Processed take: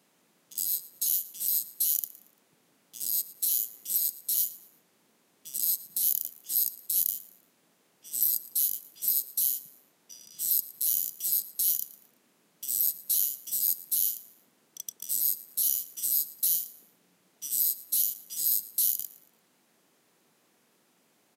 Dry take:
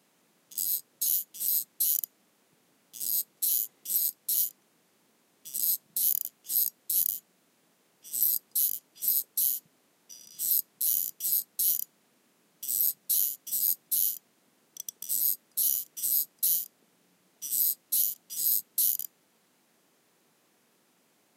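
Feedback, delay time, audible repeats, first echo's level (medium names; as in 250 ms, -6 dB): 34%, 114 ms, 2, -19.0 dB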